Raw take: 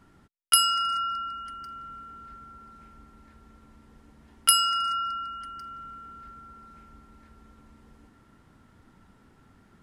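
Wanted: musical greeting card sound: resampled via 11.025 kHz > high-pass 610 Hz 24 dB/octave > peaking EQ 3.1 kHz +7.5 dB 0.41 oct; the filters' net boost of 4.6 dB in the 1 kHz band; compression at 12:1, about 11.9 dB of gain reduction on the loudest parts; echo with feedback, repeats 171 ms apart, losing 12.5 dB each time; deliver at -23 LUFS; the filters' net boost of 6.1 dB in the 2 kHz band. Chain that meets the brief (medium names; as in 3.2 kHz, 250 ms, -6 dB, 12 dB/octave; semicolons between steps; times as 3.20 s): peaking EQ 1 kHz +5 dB; peaking EQ 2 kHz +3.5 dB; compression 12:1, threshold -25 dBFS; feedback delay 171 ms, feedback 24%, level -12.5 dB; resampled via 11.025 kHz; high-pass 610 Hz 24 dB/octave; peaking EQ 3.1 kHz +7.5 dB 0.41 oct; trim +5 dB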